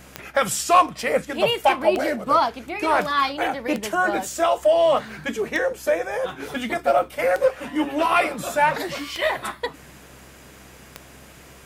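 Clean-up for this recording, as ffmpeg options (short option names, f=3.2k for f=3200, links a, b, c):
-af "adeclick=t=4,bandreject=f=65.3:t=h:w=4,bandreject=f=130.6:t=h:w=4,bandreject=f=195.9:t=h:w=4,bandreject=f=261.2:t=h:w=4,bandreject=f=326.5:t=h:w=4"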